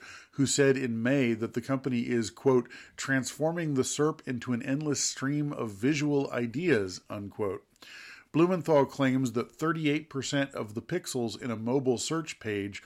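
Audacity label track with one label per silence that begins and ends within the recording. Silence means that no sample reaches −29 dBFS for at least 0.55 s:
7.550000	8.350000	silence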